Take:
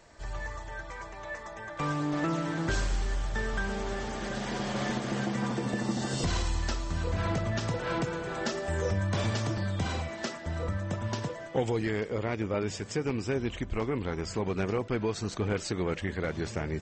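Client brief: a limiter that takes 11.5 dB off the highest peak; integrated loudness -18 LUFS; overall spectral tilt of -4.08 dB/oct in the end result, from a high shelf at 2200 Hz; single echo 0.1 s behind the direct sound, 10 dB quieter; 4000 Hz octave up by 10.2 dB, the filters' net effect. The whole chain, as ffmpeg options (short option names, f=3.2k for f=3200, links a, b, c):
-af "highshelf=f=2.2k:g=4.5,equalizer=f=4k:t=o:g=8.5,alimiter=level_in=1.5dB:limit=-24dB:level=0:latency=1,volume=-1.5dB,aecho=1:1:100:0.316,volume=16.5dB"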